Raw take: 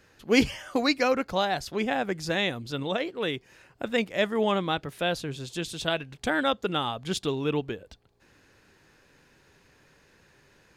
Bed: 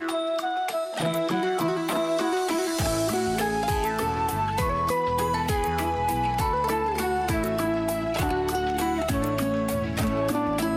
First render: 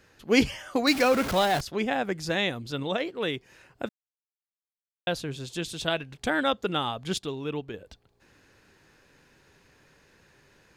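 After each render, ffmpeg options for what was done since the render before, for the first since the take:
-filter_complex "[0:a]asettb=1/sr,asplit=3[a][b][c];[a]atrim=end=0.874[d];[b]atrim=start=0.87:end=1.61,asetpts=PTS-STARTPTS,afade=t=in:d=0.004:c=qsin,afade=t=out:st=0.736:d=0.004:c=qsin,aeval=exprs='val(0)+0.5*0.0473*sgn(val(0))':c=same[e];[c]atrim=start=1.606[f];[d][e]acrossfade=d=0.004:c1=hsin:c2=qsin[g];[g][f]acrossfade=d=0.004:c1=qsin:c2=hsin,asplit=5[h][i][j][k][l];[h]atrim=end=3.89,asetpts=PTS-STARTPTS,afade=t=out:st=3.886:d=0.004:c=hsin[m];[i]atrim=start=3.89:end=5.07,asetpts=PTS-STARTPTS,volume=0[n];[j]atrim=start=5.07:end=7.182,asetpts=PTS-STARTPTS,afade=t=in:d=0.004:c=hsin[o];[k]atrim=start=7.178:end=7.742,asetpts=PTS-STARTPTS,volume=-5dB[p];[l]atrim=start=7.738[q];[m][n][o]concat=n=3:v=0:a=1[r];[r][p]acrossfade=d=0.004:c1=hsin:c2=hsin[s];[s][q]acrossfade=d=0.004:c1=hsin:c2=hsin"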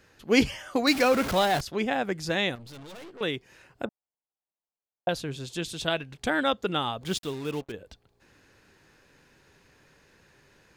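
-filter_complex "[0:a]asettb=1/sr,asplit=3[a][b][c];[a]atrim=end=2.554[d];[b]atrim=start=2.55:end=3.21,asetpts=PTS-STARTPTS,afade=t=in:d=0.004:c=qsin,afade=t=out:st=0.656:d=0.004:c=qsin,aeval=exprs='(tanh(141*val(0)+0.45)-tanh(0.45))/141':c=same[e];[c]atrim=start=3.206[f];[d][e]acrossfade=d=0.004:c1=hsin:c2=qsin[g];[g][f]acrossfade=d=0.004:c1=qsin:c2=hsin,asettb=1/sr,asplit=3[h][i][j];[h]atrim=end=3.854[k];[i]atrim=start=3.85:end=5.09,asetpts=PTS-STARTPTS,afade=t=in:d=0.004:c=qsin,afade=t=out:st=1.236:d=0.004:c=qsin,lowpass=f=800:t=q:w=2.2[l];[j]atrim=start=5.086[m];[k][l]acrossfade=d=0.004:c1=hsin:c2=qsin[n];[n][m]acrossfade=d=0.004:c1=qsin:c2=hsin,asettb=1/sr,asplit=3[o][p][q];[o]atrim=end=7.014[r];[p]atrim=start=7.01:end=7.72,asetpts=PTS-STARTPTS,afade=t=in:d=0.004:c=qsin,afade=t=out:st=0.706:d=0.004:c=qsin,acrusher=bits=6:mix=0:aa=0.5[s];[q]atrim=start=7.716[t];[r][s]acrossfade=d=0.004:c1=hsin:c2=qsin[u];[u][t]acrossfade=d=0.004:c1=qsin:c2=hsin"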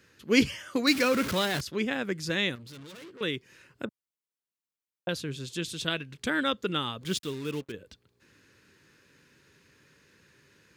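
-af "highpass=85,equalizer=f=740:t=o:w=0.63:g=-13.5"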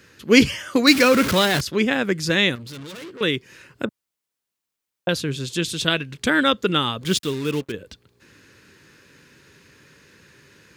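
-af "volume=9.5dB,alimiter=limit=-2dB:level=0:latency=1"

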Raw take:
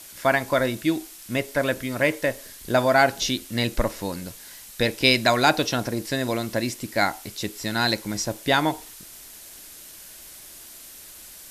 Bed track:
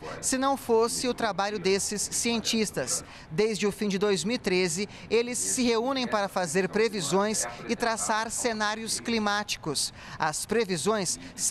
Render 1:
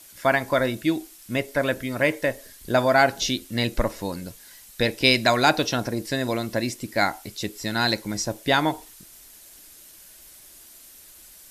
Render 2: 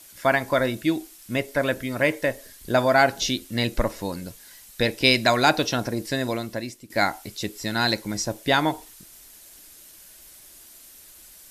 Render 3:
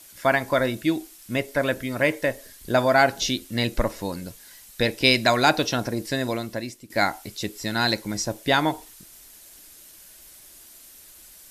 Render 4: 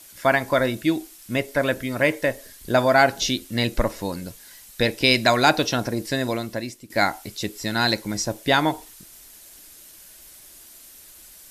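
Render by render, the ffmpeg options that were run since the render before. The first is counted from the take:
-af "afftdn=nr=6:nf=-44"
-filter_complex "[0:a]asplit=2[a][b];[a]atrim=end=6.9,asetpts=PTS-STARTPTS,afade=t=out:st=6.21:d=0.69:silence=0.177828[c];[b]atrim=start=6.9,asetpts=PTS-STARTPTS,afade=t=in:d=0.004:c=hsin:silence=0.177828[d];[c][d]concat=n=2:v=0:a=1"
-af anull
-af "volume=1.5dB,alimiter=limit=-3dB:level=0:latency=1"

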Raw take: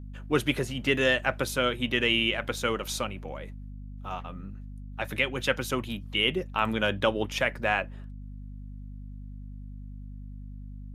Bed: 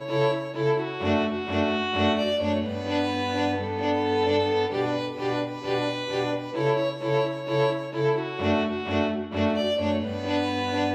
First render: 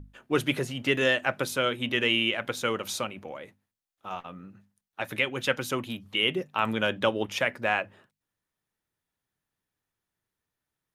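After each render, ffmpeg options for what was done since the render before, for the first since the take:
-af "bandreject=f=50:t=h:w=6,bandreject=f=100:t=h:w=6,bandreject=f=150:t=h:w=6,bandreject=f=200:t=h:w=6,bandreject=f=250:t=h:w=6"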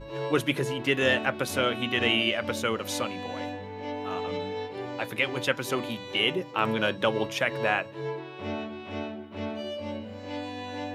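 -filter_complex "[1:a]volume=-10dB[a];[0:a][a]amix=inputs=2:normalize=0"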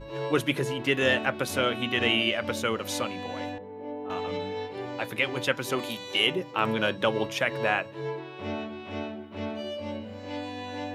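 -filter_complex "[0:a]asettb=1/sr,asplit=3[a][b][c];[a]atrim=end=3.584[d];[b]atrim=start=3.58:end=4.1,asetpts=PTS-STARTPTS,afade=t=in:d=0.004:c=qsin,afade=t=out:st=0.516:d=0.004:c=qsin,bandpass=f=390:t=q:w=0.89[e];[c]atrim=start=4.096[f];[d][e]acrossfade=d=0.004:c1=hsin:c2=qsin[g];[g][f]acrossfade=d=0.004:c1=qsin:c2=hsin,asettb=1/sr,asplit=3[h][i][j];[h]atrim=end=5.794[k];[i]atrim=start=5.79:end=6.27,asetpts=PTS-STARTPTS,afade=t=in:d=0.004:c=qsin,afade=t=out:st=0.476:d=0.004:c=qsin,bass=f=250:g=-6,treble=f=4k:g=9[l];[j]atrim=start=6.266[m];[k][l]acrossfade=d=0.004:c1=hsin:c2=qsin[n];[n][m]acrossfade=d=0.004:c1=qsin:c2=hsin"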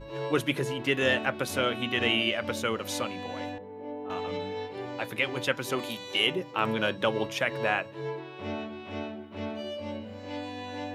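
-af "volume=-1.5dB"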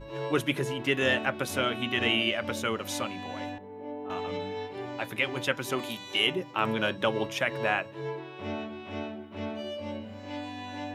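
-af "equalizer=f=4.4k:w=6.1:g=-3.5,bandreject=f=490:w=12"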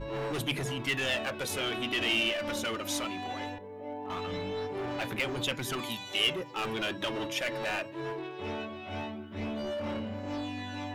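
-filter_complex "[0:a]aphaser=in_gain=1:out_gain=1:delay=3.4:decay=0.48:speed=0.2:type=sinusoidal,acrossover=split=2600[a][b];[a]volume=32dB,asoftclip=hard,volume=-32dB[c];[c][b]amix=inputs=2:normalize=0"

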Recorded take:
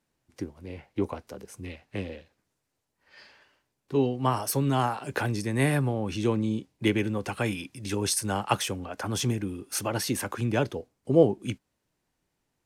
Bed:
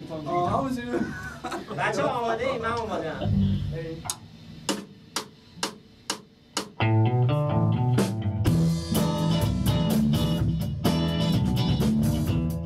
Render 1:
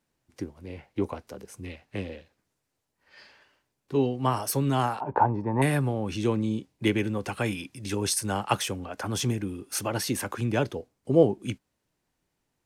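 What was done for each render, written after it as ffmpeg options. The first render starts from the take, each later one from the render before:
-filter_complex "[0:a]asettb=1/sr,asplit=3[a][b][c];[a]atrim=end=5.004[d];[b]atrim=start=5:end=5.62,asetpts=PTS-STARTPTS,afade=t=in:d=0.004:c=qsin,afade=t=out:st=0.616:d=0.004:c=qsin,lowpass=f=910:t=q:w=9.8[e];[c]atrim=start=5.616[f];[d][e]acrossfade=d=0.004:c1=hsin:c2=qsin[g];[g][f]acrossfade=d=0.004:c1=qsin:c2=hsin"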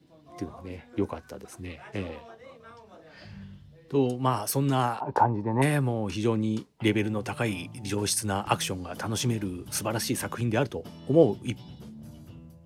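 -filter_complex "[1:a]volume=-21.5dB[a];[0:a][a]amix=inputs=2:normalize=0"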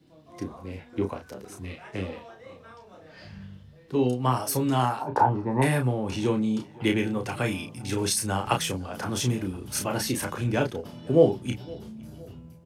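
-filter_complex "[0:a]asplit=2[a][b];[b]adelay=32,volume=-5dB[c];[a][c]amix=inputs=2:normalize=0,asplit=2[d][e];[e]adelay=513,lowpass=f=2.5k:p=1,volume=-22.5dB,asplit=2[f][g];[g]adelay=513,lowpass=f=2.5k:p=1,volume=0.48,asplit=2[h][i];[i]adelay=513,lowpass=f=2.5k:p=1,volume=0.48[j];[d][f][h][j]amix=inputs=4:normalize=0"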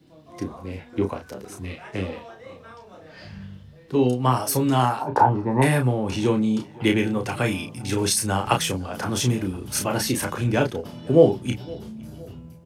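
-af "volume=4dB,alimiter=limit=-3dB:level=0:latency=1"

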